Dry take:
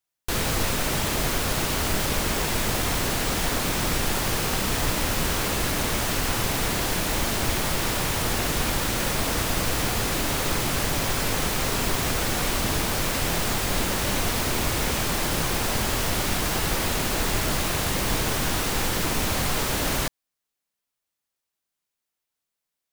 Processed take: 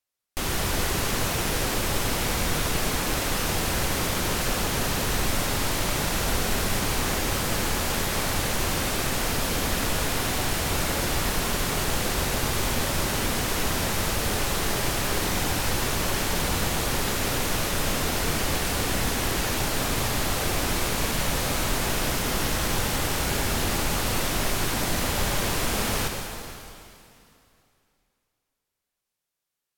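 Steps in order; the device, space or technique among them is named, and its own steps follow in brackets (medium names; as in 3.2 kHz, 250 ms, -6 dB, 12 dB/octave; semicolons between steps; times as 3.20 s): slowed and reverbed (tape speed -23%; reverberation RT60 2.7 s, pre-delay 51 ms, DRR 3 dB); trim -2.5 dB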